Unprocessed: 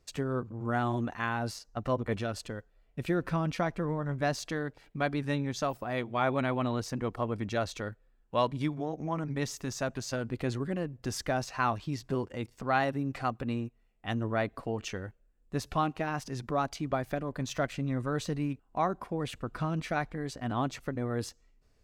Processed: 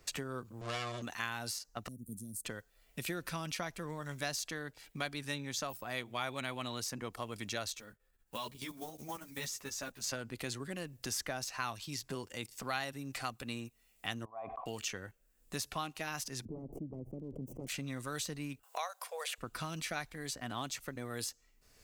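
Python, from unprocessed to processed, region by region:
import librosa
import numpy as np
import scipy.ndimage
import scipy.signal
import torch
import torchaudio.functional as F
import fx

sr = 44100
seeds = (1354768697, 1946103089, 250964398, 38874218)

y = fx.chain(x, sr, fx.lower_of_two(delay_ms=1.7),
    fx.lowpass(hz=6000.0, slope=12), at=(0.61, 1.02))
y = fx.chain(y, sr, fx.cheby1_bandstop(low_hz=230.0, high_hz=9400.0, order=3),
    fx.low_shelf(hz=180.0, db=-8.0), at=(1.88, 2.45))
y = fx.chain(y, sr, fx.block_float(bits=7),
    fx.level_steps(step_db=11),
    fx.ensemble(), at=(7.75, 10.04))
y = fx.chain(y, sr, fx.formant_cascade(vowel='a'),
    fx.sustainer(db_per_s=23.0), at=(14.25, 14.66))
y = fx.chain(y, sr, fx.self_delay(depth_ms=0.7),
    fx.cheby2_lowpass(hz=1500.0, order=4, stop_db=60),
    fx.pre_swell(db_per_s=71.0), at=(16.45, 17.67))
y = fx.chain(y, sr, fx.brickwall_highpass(low_hz=450.0),
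    fx.band_squash(depth_pct=40), at=(18.63, 19.38))
y = librosa.effects.preemphasis(y, coef=0.9, zi=[0.0])
y = fx.band_squash(y, sr, depth_pct=70)
y = y * 10.0 ** (8.0 / 20.0)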